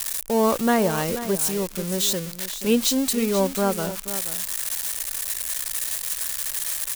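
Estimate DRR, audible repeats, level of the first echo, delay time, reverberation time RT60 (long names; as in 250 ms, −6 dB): no reverb audible, 1, −12.5 dB, 483 ms, no reverb audible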